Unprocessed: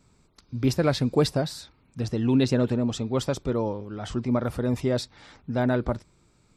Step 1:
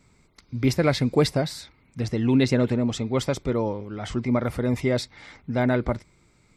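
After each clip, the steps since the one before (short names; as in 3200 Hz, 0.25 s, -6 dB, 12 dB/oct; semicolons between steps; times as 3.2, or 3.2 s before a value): bell 2100 Hz +11.5 dB 0.22 oct; gain +1.5 dB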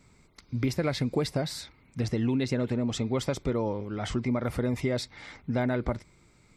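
compressor 6:1, threshold -24 dBFS, peak gain reduction 9.5 dB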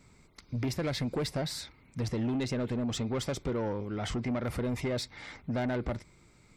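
soft clip -26.5 dBFS, distortion -12 dB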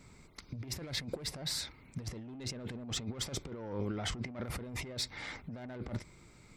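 negative-ratio compressor -36 dBFS, ratio -0.5; gain -2.5 dB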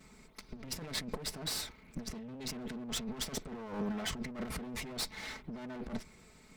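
minimum comb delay 4.6 ms; gain +1.5 dB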